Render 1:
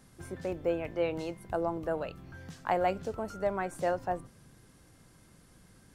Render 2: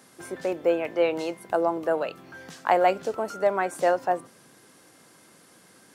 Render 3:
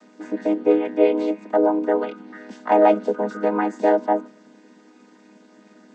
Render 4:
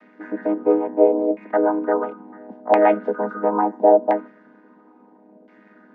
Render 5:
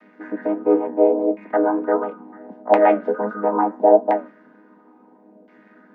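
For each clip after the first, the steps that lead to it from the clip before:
HPF 310 Hz 12 dB/oct; gain +8.5 dB
chord vocoder minor triad, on G#3; gain +6 dB
LFO low-pass saw down 0.73 Hz 600–2200 Hz; gain -1.5 dB
flange 1.5 Hz, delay 8.7 ms, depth 5.2 ms, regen +66%; gain +4.5 dB

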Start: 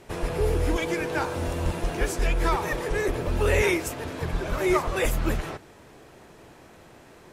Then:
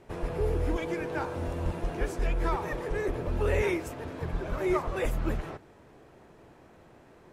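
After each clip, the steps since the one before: high shelf 2400 Hz -10 dB; gain -4 dB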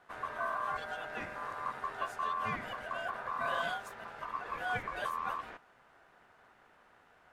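ring modulator 1100 Hz; gain -5.5 dB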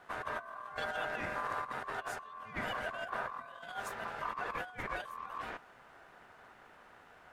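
negative-ratio compressor -41 dBFS, ratio -0.5; gain +1.5 dB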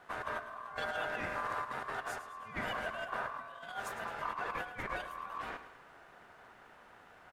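feedback echo 0.107 s, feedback 53%, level -12.5 dB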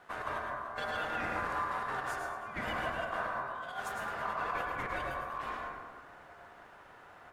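reverb RT60 1.4 s, pre-delay 93 ms, DRR 0 dB

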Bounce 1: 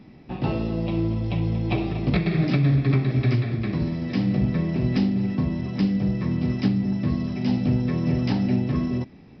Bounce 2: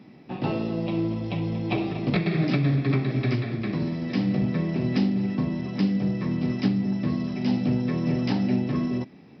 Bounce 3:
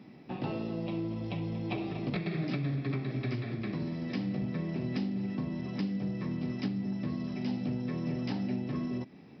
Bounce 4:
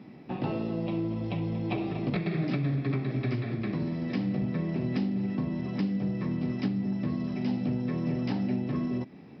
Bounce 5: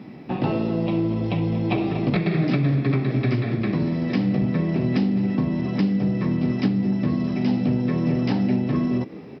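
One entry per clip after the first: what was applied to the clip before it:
HPF 150 Hz 12 dB/oct
compressor 2:1, threshold -32 dBFS, peak gain reduction 8 dB; gain -3 dB
high shelf 3900 Hz -7.5 dB; gain +4 dB
frequency-shifting echo 0.21 s, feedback 54%, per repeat +77 Hz, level -21 dB; gain +8 dB

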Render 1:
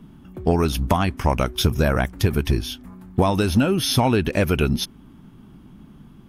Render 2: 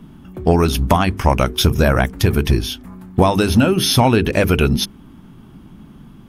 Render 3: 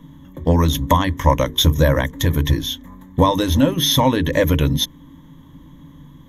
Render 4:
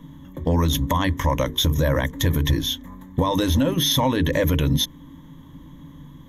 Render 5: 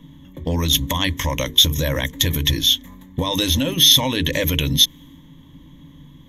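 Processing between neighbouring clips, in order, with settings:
notches 50/100/150/200/250/300/350/400/450 Hz; gain +5.5 dB
ripple EQ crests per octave 1.1, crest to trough 15 dB; gain -4 dB
limiter -11.5 dBFS, peak gain reduction 9.5 dB
resonant high shelf 1900 Hz +9.5 dB, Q 1.5; mismatched tape noise reduction decoder only; gain -1.5 dB

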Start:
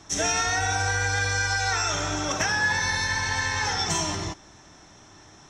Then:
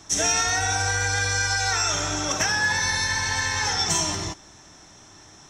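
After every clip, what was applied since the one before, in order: high shelf 5900 Hz +9 dB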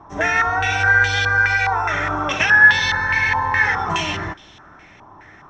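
stepped low-pass 4.8 Hz 1000–3200 Hz; gain +3 dB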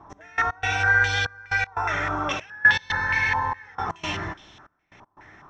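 step gate "x..x.xxxx" 119 bpm -24 dB; gain -4.5 dB

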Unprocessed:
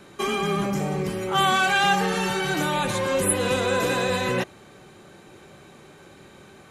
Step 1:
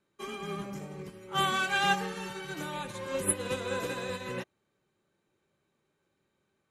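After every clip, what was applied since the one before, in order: notch 740 Hz, Q 12; upward expander 2.5:1, over -35 dBFS; gain -4 dB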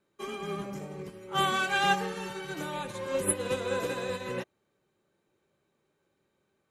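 bell 510 Hz +3.5 dB 1.5 oct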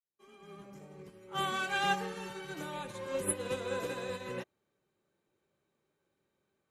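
opening faded in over 1.76 s; gain -5 dB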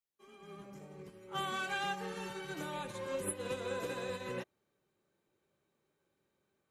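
compressor 6:1, threshold -34 dBFS, peak gain reduction 8.5 dB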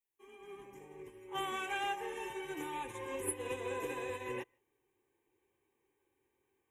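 fixed phaser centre 910 Hz, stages 8; reverb RT60 0.10 s, pre-delay 0.115 s, DRR 33.5 dB; gain +3 dB

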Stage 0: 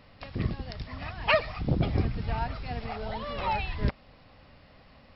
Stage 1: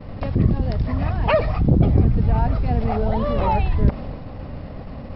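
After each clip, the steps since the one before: tilt shelf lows +10 dB, about 1100 Hz; expander -40 dBFS; fast leveller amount 50%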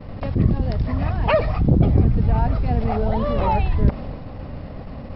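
attack slew limiter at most 360 dB/s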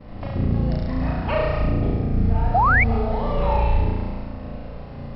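limiter -11.5 dBFS, peak gain reduction 6.5 dB; flutter echo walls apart 6 m, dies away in 1.4 s; painted sound rise, 2.54–2.84, 660–2400 Hz -11 dBFS; gain -6 dB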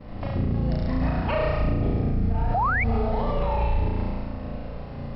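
limiter -15.5 dBFS, peak gain reduction 8.5 dB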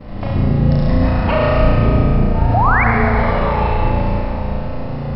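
reverb RT60 3.2 s, pre-delay 48 ms, DRR 0 dB; gain +7.5 dB

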